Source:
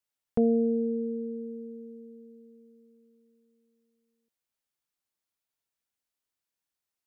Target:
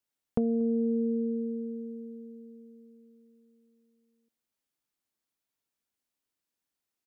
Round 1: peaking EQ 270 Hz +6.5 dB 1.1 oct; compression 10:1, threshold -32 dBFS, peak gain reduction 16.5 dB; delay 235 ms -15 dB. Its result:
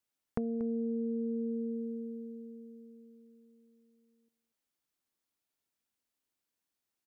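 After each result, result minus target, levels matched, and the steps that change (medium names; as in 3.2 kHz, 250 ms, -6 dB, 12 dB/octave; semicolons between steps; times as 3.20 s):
echo-to-direct +12 dB; compression: peak gain reduction +7 dB
change: delay 235 ms -27 dB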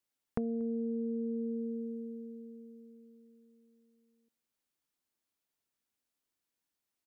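compression: peak gain reduction +7 dB
change: compression 10:1, threshold -24 dBFS, peak gain reduction 9.5 dB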